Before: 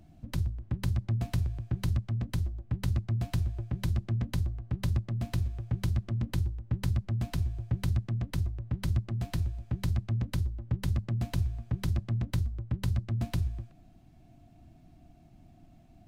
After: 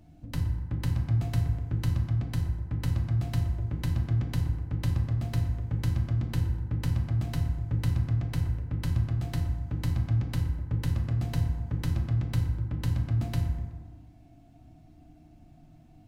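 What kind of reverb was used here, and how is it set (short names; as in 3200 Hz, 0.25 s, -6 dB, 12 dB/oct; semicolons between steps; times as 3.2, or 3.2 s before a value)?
FDN reverb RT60 1.4 s, low-frequency decay 1×, high-frequency decay 0.45×, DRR 1.5 dB; gain -1 dB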